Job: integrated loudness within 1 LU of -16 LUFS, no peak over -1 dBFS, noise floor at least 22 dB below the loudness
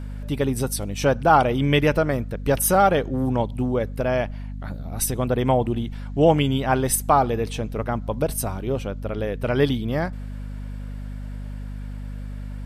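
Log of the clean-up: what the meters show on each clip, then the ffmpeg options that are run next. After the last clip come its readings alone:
hum 50 Hz; harmonics up to 250 Hz; hum level -29 dBFS; loudness -22.5 LUFS; peak -3.5 dBFS; loudness target -16.0 LUFS
-> -af "bandreject=f=50:t=h:w=6,bandreject=f=100:t=h:w=6,bandreject=f=150:t=h:w=6,bandreject=f=200:t=h:w=6,bandreject=f=250:t=h:w=6"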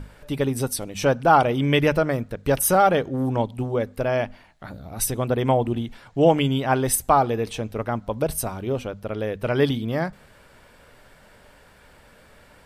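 hum none; loudness -22.5 LUFS; peak -3.5 dBFS; loudness target -16.0 LUFS
-> -af "volume=6.5dB,alimiter=limit=-1dB:level=0:latency=1"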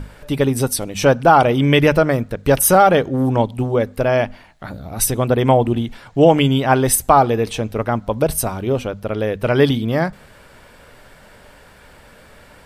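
loudness -16.5 LUFS; peak -1.0 dBFS; noise floor -46 dBFS

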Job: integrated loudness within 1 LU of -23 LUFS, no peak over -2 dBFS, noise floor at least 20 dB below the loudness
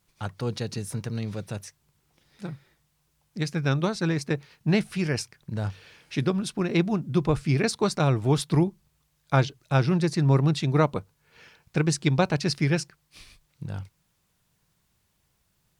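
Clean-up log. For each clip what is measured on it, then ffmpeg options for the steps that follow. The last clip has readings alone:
loudness -26.0 LUFS; peak -9.0 dBFS; loudness target -23.0 LUFS
-> -af "volume=3dB"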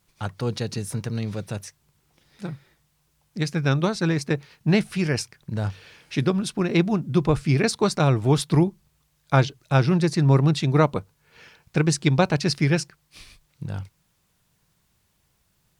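loudness -23.0 LUFS; peak -6.0 dBFS; noise floor -69 dBFS

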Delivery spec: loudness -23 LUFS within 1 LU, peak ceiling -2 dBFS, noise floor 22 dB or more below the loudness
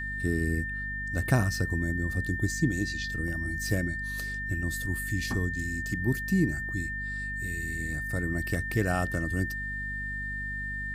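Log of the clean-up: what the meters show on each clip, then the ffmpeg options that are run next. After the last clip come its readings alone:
hum 50 Hz; harmonics up to 250 Hz; hum level -36 dBFS; steady tone 1800 Hz; tone level -33 dBFS; loudness -30.0 LUFS; peak -8.0 dBFS; loudness target -23.0 LUFS
-> -af "bandreject=f=50:t=h:w=6,bandreject=f=100:t=h:w=6,bandreject=f=150:t=h:w=6,bandreject=f=200:t=h:w=6,bandreject=f=250:t=h:w=6"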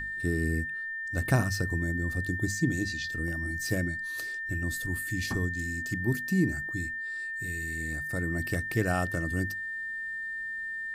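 hum none; steady tone 1800 Hz; tone level -33 dBFS
-> -af "bandreject=f=1.8k:w=30"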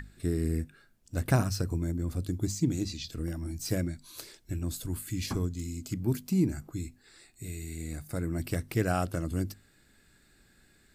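steady tone none; loudness -32.5 LUFS; peak -9.5 dBFS; loudness target -23.0 LUFS
-> -af "volume=9.5dB,alimiter=limit=-2dB:level=0:latency=1"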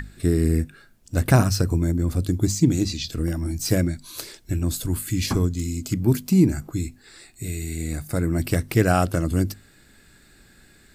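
loudness -23.0 LUFS; peak -2.0 dBFS; noise floor -54 dBFS

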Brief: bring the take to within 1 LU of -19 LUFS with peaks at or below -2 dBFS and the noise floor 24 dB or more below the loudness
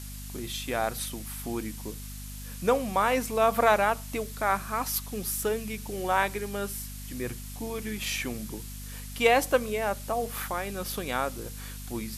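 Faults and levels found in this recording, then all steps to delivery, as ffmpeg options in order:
hum 50 Hz; harmonics up to 250 Hz; hum level -38 dBFS; noise floor -40 dBFS; noise floor target -53 dBFS; loudness -29.0 LUFS; peak -8.5 dBFS; loudness target -19.0 LUFS
-> -af "bandreject=f=50:t=h:w=4,bandreject=f=100:t=h:w=4,bandreject=f=150:t=h:w=4,bandreject=f=200:t=h:w=4,bandreject=f=250:t=h:w=4"
-af "afftdn=nr=13:nf=-40"
-af "volume=10dB,alimiter=limit=-2dB:level=0:latency=1"

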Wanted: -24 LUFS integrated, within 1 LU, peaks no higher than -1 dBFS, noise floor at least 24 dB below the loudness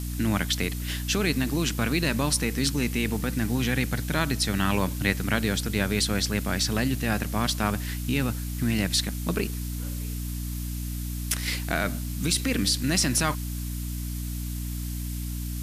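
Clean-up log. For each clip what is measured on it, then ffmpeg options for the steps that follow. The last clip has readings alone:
hum 60 Hz; harmonics up to 300 Hz; hum level -29 dBFS; noise floor -32 dBFS; noise floor target -51 dBFS; loudness -27.0 LUFS; peak -6.5 dBFS; loudness target -24.0 LUFS
-> -af "bandreject=f=60:t=h:w=6,bandreject=f=120:t=h:w=6,bandreject=f=180:t=h:w=6,bandreject=f=240:t=h:w=6,bandreject=f=300:t=h:w=6"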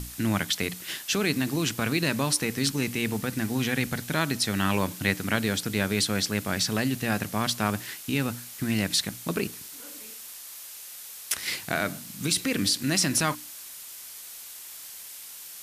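hum none; noise floor -43 dBFS; noise floor target -51 dBFS
-> -af "afftdn=nr=8:nf=-43"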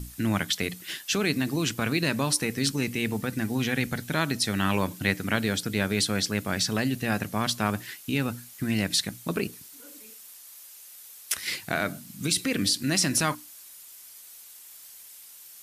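noise floor -48 dBFS; noise floor target -51 dBFS
-> -af "afftdn=nr=6:nf=-48"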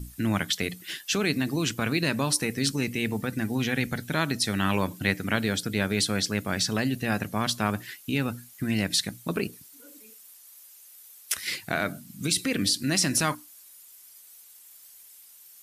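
noise floor -51 dBFS; loudness -27.0 LUFS; peak -7.0 dBFS; loudness target -24.0 LUFS
-> -af "volume=3dB"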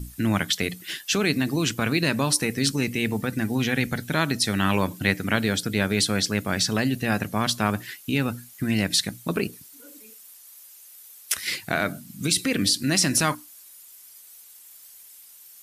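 loudness -24.0 LUFS; peak -4.0 dBFS; noise floor -48 dBFS

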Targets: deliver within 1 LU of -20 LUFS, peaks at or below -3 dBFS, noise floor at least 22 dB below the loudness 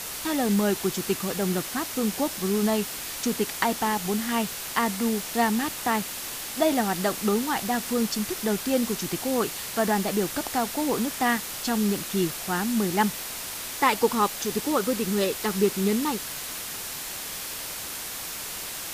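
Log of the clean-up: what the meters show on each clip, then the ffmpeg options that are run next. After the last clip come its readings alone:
noise floor -35 dBFS; noise floor target -49 dBFS; loudness -26.5 LUFS; peak -6.5 dBFS; loudness target -20.0 LUFS
-> -af "afftdn=nr=14:nf=-35"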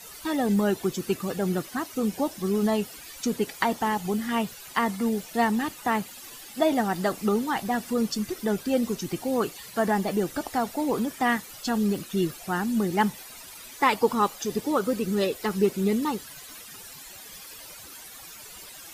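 noise floor -44 dBFS; noise floor target -49 dBFS
-> -af "afftdn=nr=6:nf=-44"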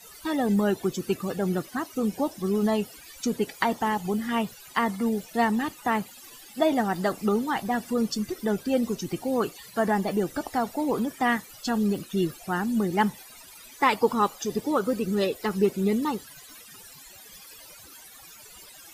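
noise floor -48 dBFS; noise floor target -49 dBFS
-> -af "afftdn=nr=6:nf=-48"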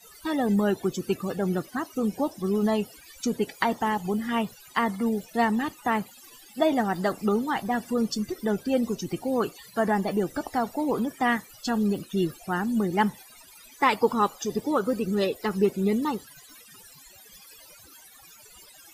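noise floor -51 dBFS; loudness -27.0 LUFS; peak -7.5 dBFS; loudness target -20.0 LUFS
-> -af "volume=7dB,alimiter=limit=-3dB:level=0:latency=1"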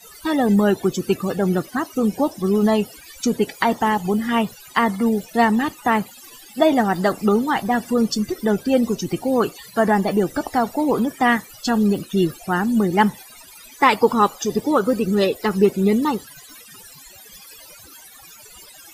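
loudness -20.0 LUFS; peak -3.0 dBFS; noise floor -44 dBFS

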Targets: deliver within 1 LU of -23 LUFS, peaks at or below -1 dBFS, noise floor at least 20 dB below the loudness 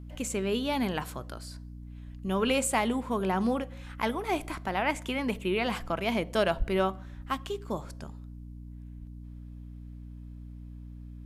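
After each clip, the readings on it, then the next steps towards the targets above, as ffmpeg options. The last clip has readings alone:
hum 60 Hz; harmonics up to 300 Hz; hum level -41 dBFS; loudness -30.5 LUFS; peak -12.5 dBFS; loudness target -23.0 LUFS
-> -af "bandreject=f=60:t=h:w=4,bandreject=f=120:t=h:w=4,bandreject=f=180:t=h:w=4,bandreject=f=240:t=h:w=4,bandreject=f=300:t=h:w=4"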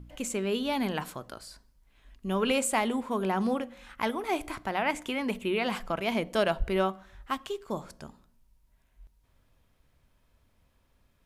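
hum none; loudness -30.5 LUFS; peak -12.5 dBFS; loudness target -23.0 LUFS
-> -af "volume=7.5dB"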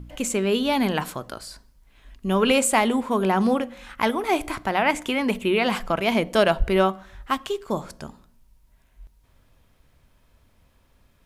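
loudness -23.0 LUFS; peak -5.0 dBFS; noise floor -61 dBFS

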